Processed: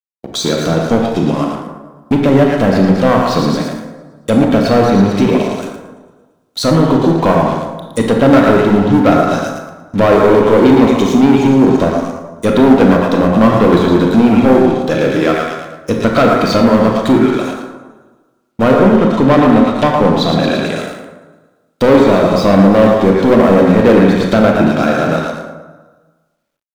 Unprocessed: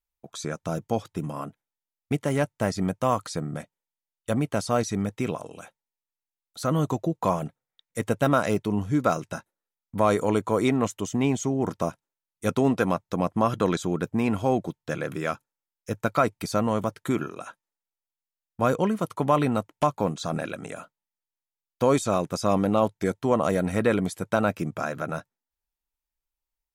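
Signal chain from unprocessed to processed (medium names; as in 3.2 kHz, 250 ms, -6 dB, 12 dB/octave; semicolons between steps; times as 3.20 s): thinning echo 113 ms, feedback 62%, high-pass 1.2 kHz, level -3.5 dB; low-pass that closes with the level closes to 2.2 kHz, closed at -21.5 dBFS; ten-band graphic EQ 250 Hz +8 dB, 500 Hz +5 dB, 4 kHz +11 dB; waveshaping leveller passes 3; 18.73–20.79 s: treble shelf 9.9 kHz -7.5 dB; reverberation RT60 1.3 s, pre-delay 23 ms, DRR 1.5 dB; word length cut 12-bit, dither none; trim -1 dB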